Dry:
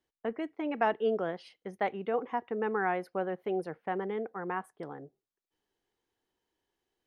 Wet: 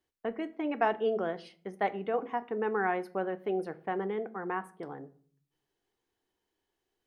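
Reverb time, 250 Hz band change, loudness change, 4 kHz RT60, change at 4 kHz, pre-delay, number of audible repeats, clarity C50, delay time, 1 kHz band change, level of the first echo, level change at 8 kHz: 0.50 s, +0.5 dB, +0.5 dB, 0.30 s, +0.5 dB, 3 ms, no echo audible, 19.5 dB, no echo audible, +0.5 dB, no echo audible, can't be measured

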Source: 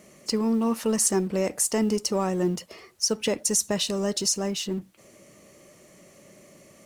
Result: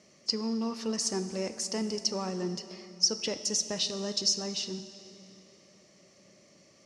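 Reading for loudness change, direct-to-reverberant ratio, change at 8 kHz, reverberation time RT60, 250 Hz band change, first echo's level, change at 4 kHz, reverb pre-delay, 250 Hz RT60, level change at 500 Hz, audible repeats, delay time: −5.5 dB, 10.0 dB, −6.5 dB, 2.9 s, −8.5 dB, no echo audible, +0.5 dB, 9 ms, 3.6 s, −8.5 dB, no echo audible, no echo audible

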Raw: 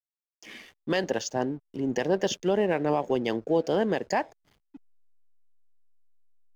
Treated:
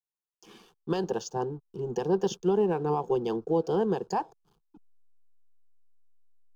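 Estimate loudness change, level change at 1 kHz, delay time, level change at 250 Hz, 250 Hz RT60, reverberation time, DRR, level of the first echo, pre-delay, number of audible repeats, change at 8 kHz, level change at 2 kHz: −1.5 dB, −0.5 dB, no echo audible, −2.0 dB, no reverb audible, no reverb audible, no reverb audible, no echo audible, no reverb audible, no echo audible, can't be measured, −12.0 dB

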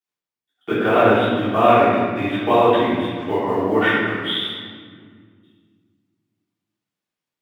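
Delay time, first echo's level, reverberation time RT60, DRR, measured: no echo audible, no echo audible, 1.9 s, −12.0 dB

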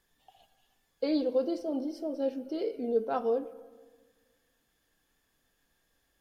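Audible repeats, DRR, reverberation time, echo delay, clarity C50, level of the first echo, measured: no echo audible, 11.5 dB, 1.5 s, no echo audible, 16.5 dB, no echo audible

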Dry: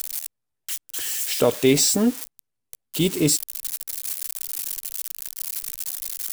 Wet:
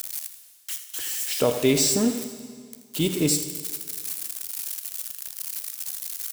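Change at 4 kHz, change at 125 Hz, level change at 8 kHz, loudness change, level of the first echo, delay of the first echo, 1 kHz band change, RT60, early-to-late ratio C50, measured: −2.0 dB, −2.0 dB, −2.5 dB, −2.5 dB, −12.0 dB, 81 ms, −2.0 dB, 1.9 s, 8.0 dB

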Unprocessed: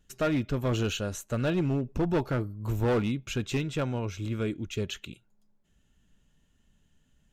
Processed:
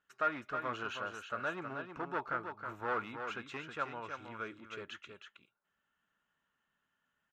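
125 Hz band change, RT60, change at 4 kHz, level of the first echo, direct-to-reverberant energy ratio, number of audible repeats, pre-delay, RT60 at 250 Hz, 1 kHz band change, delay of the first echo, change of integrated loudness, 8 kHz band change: −24.0 dB, no reverb audible, −11.0 dB, −7.0 dB, no reverb audible, 1, no reverb audible, no reverb audible, +1.0 dB, 318 ms, −9.5 dB, −19.0 dB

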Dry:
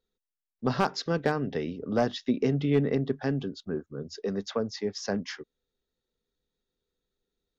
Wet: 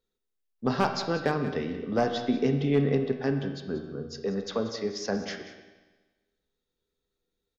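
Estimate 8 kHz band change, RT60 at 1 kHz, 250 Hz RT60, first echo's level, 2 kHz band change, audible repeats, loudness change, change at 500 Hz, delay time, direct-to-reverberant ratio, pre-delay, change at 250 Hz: can't be measured, 1.3 s, 1.3 s, −14.0 dB, +1.0 dB, 1, +0.5 dB, +1.0 dB, 185 ms, 5.0 dB, 12 ms, +0.5 dB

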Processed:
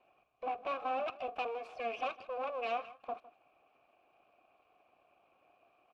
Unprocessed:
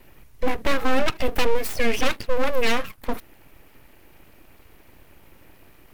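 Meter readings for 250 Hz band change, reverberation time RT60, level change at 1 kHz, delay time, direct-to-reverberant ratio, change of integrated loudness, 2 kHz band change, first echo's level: −24.5 dB, no reverb audible, −7.5 dB, 157 ms, no reverb audible, −13.5 dB, −17.5 dB, −18.5 dB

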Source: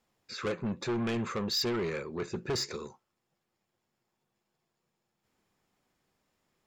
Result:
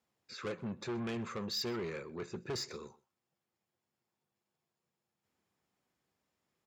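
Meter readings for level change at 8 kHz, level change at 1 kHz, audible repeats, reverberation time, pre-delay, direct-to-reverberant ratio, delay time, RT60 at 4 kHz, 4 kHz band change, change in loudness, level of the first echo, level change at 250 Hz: −6.5 dB, −6.5 dB, 1, no reverb audible, no reverb audible, no reverb audible, 127 ms, no reverb audible, −6.5 dB, −6.5 dB, −23.0 dB, −6.5 dB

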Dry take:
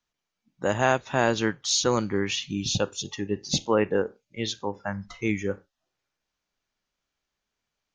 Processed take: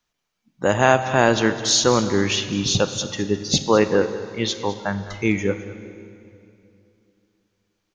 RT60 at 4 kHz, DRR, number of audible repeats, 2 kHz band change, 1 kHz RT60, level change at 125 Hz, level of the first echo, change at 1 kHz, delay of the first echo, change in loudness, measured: 2.2 s, 10.0 dB, 1, +6.5 dB, 2.6 s, +6.5 dB, −15.5 dB, +6.5 dB, 209 ms, +6.5 dB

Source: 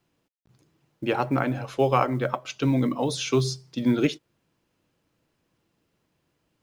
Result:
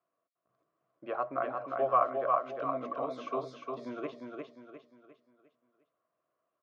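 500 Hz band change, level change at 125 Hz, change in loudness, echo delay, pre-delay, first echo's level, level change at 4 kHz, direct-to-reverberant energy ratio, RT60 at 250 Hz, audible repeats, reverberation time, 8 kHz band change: −6.5 dB, −26.0 dB, −8.0 dB, 353 ms, no reverb audible, −4.0 dB, −22.5 dB, no reverb audible, no reverb audible, 4, no reverb audible, below −30 dB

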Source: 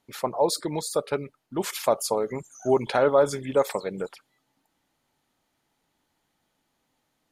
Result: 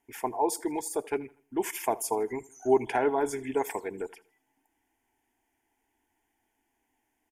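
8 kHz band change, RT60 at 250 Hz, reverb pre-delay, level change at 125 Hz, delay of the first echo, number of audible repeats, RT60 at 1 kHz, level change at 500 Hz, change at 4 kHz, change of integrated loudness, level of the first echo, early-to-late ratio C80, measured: −2.5 dB, no reverb audible, no reverb audible, −11.0 dB, 80 ms, 2, no reverb audible, −5.5 dB, −12.0 dB, −4.5 dB, −22.5 dB, no reverb audible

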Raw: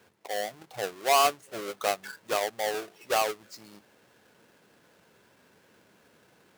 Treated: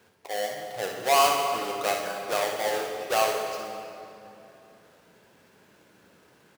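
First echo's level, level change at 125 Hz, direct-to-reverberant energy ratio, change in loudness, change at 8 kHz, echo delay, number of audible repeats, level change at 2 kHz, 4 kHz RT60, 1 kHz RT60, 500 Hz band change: −7.0 dB, +4.0 dB, 0.5 dB, +2.5 dB, +2.5 dB, 62 ms, 1, +2.5 dB, 2.0 s, 2.7 s, +3.0 dB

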